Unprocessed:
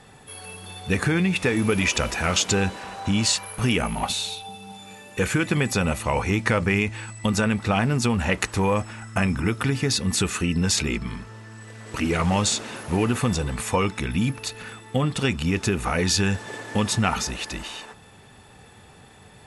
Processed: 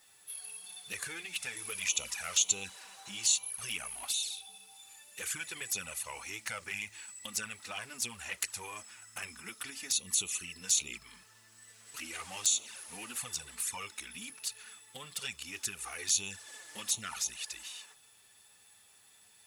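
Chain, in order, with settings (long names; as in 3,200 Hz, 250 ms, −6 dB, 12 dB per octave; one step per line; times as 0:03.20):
first-order pre-emphasis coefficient 0.97
flanger swept by the level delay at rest 11.1 ms, full sweep at −27 dBFS
bit reduction 11 bits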